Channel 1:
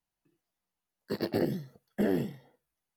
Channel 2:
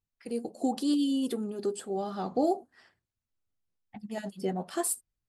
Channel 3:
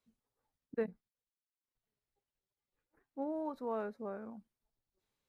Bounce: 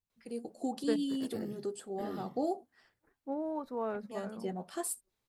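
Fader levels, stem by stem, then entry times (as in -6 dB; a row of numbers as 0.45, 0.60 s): -13.5, -6.5, +2.0 dB; 0.00, 0.00, 0.10 s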